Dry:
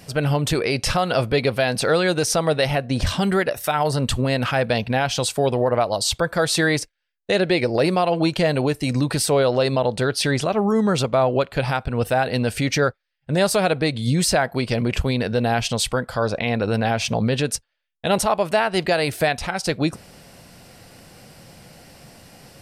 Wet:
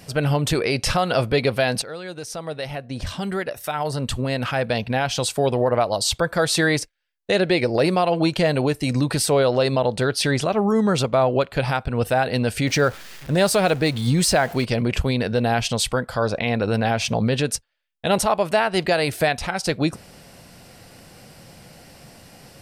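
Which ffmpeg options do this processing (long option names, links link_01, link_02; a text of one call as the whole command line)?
ffmpeg -i in.wav -filter_complex "[0:a]asettb=1/sr,asplit=3[link_01][link_02][link_03];[link_01]atrim=end=12.674[link_04];[link_02]atrim=start=12.67:end=14.65,asetpts=PTS-STARTPTS,afade=type=in:duration=0.004:curve=qsin,afade=type=out:start_time=1.976:duration=0.004:curve=qsin,aeval=exprs='val(0)+0.5*0.0224*sgn(val(0))':channel_layout=same[link_05];[link_03]atrim=start=14.646[link_06];[link_04][link_05]acrossfade=duration=0.004:curve1=hsin:curve2=qsin[link_07];[link_07][link_06]acrossfade=duration=0.004:curve1=qsin:curve2=hsin,asplit=2[link_08][link_09];[link_08]atrim=end=1.82,asetpts=PTS-STARTPTS,afade=type=out:start_time=1.816:duration=0.004:curve=hsin:silence=0.141254[link_10];[link_09]atrim=start=1.82,asetpts=PTS-STARTPTS,afade=type=in:duration=3.79:silence=0.141254[link_11];[link_10][link_11]concat=n=2:v=0:a=1" out.wav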